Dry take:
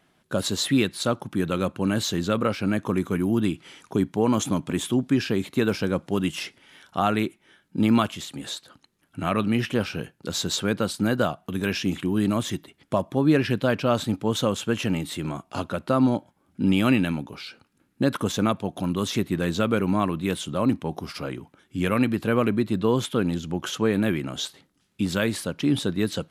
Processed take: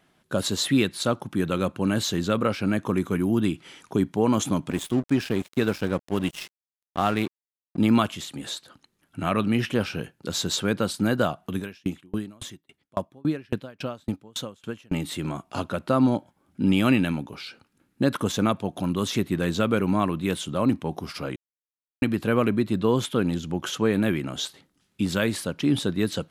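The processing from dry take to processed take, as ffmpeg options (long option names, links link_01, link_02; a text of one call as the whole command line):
ffmpeg -i in.wav -filter_complex "[0:a]asettb=1/sr,asplit=3[link_01][link_02][link_03];[link_01]atrim=end=4.714[link_04];[link_02]atrim=start=4.71:end=7.78,asetpts=PTS-STARTPTS,afade=type=in:duration=0.004:curve=qsin,afade=type=out:start_time=3.066:duration=0.004:curve=qsin,aeval=exprs='sgn(val(0))*max(abs(val(0))-0.015,0)':channel_layout=same[link_05];[link_03]atrim=start=7.776[link_06];[link_04][link_05]acrossfade=duration=0.004:curve1=hsin:curve2=qsin[link_07];[link_07][link_06]acrossfade=duration=0.004:curve1=qsin:curve2=hsin,asettb=1/sr,asplit=3[link_08][link_09][link_10];[link_08]atrim=end=11.584[link_11];[link_09]atrim=start=11.58:end=14.92,asetpts=PTS-STARTPTS,afade=type=in:duration=0.004:curve=qsin,afade=type=out:start_time=3.336:duration=0.004:curve=qsin,aeval=exprs='val(0)*pow(10,-35*if(lt(mod(3.6*n/s,1),2*abs(3.6)/1000),1-mod(3.6*n/s,1)/(2*abs(3.6)/1000),(mod(3.6*n/s,1)-2*abs(3.6)/1000)/(1-2*abs(3.6)/1000))/20)':channel_layout=same[link_12];[link_10]atrim=start=14.916[link_13];[link_11][link_12]acrossfade=duration=0.004:curve1=hsin:curve2=qsin[link_14];[link_14][link_13]acrossfade=duration=0.004:curve1=qsin:curve2=hsin,asplit=3[link_15][link_16][link_17];[link_15]atrim=end=21.36,asetpts=PTS-STARTPTS,afade=type=out:start_time=21.356:duration=0.004:curve=hsin[link_18];[link_16]atrim=start=21.36:end=22.02,asetpts=PTS-STARTPTS,volume=0[link_19];[link_17]atrim=start=22.02,asetpts=PTS-STARTPTS,afade=type=in:duration=0.004:curve=hsin[link_20];[link_18][link_19][link_20]concat=n=3:v=0:a=1" out.wav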